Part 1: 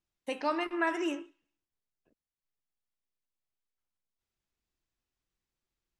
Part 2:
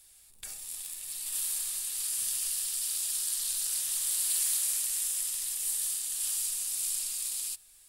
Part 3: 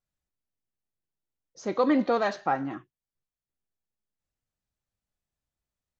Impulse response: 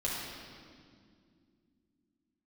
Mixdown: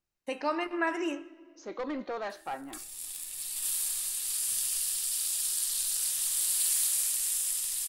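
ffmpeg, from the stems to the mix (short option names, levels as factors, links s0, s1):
-filter_complex "[0:a]bandreject=f=3400:w=7.2,volume=1,asplit=2[s0][s1];[s1]volume=0.0668[s2];[1:a]dynaudnorm=f=270:g=5:m=1.68,adelay=2300,volume=0.668[s3];[2:a]highpass=300,asoftclip=type=tanh:threshold=0.075,volume=0.447[s4];[3:a]atrim=start_sample=2205[s5];[s2][s5]afir=irnorm=-1:irlink=0[s6];[s0][s3][s4][s6]amix=inputs=4:normalize=0"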